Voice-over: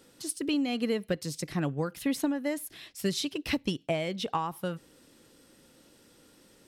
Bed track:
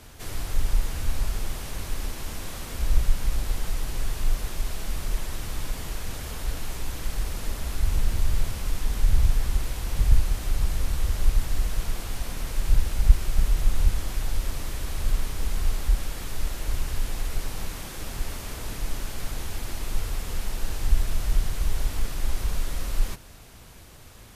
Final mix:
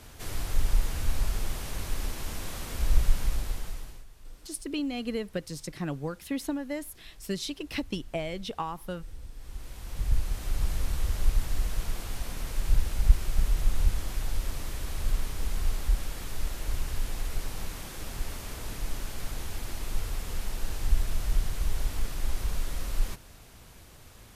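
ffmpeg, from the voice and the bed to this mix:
-filter_complex "[0:a]adelay=4250,volume=0.708[s0];[1:a]volume=8.41,afade=t=out:st=3.17:d=0.88:silence=0.0794328,afade=t=in:st=9.33:d=1.35:silence=0.1[s1];[s0][s1]amix=inputs=2:normalize=0"

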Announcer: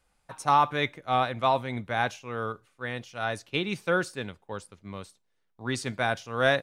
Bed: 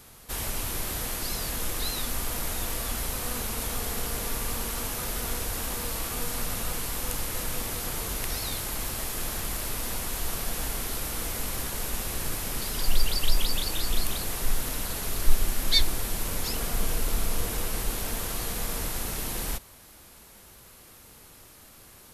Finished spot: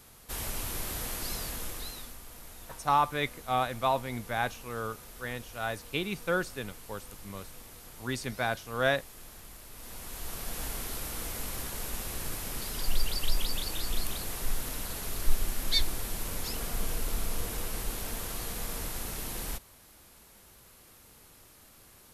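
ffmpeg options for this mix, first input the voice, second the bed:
-filter_complex "[0:a]adelay=2400,volume=0.668[s0];[1:a]volume=2.51,afade=t=out:st=1.32:d=0.86:silence=0.223872,afade=t=in:st=9.7:d=0.95:silence=0.251189[s1];[s0][s1]amix=inputs=2:normalize=0"

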